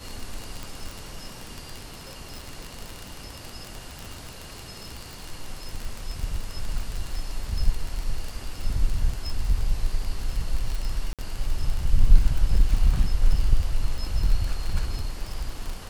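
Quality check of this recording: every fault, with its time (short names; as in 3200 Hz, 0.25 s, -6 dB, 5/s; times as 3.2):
crackle 36/s -26 dBFS
0.63 pop
11.13–11.19 gap 57 ms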